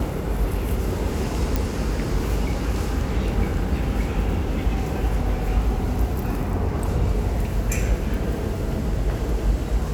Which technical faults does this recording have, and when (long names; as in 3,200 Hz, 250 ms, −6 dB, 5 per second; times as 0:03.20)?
0:01.56: click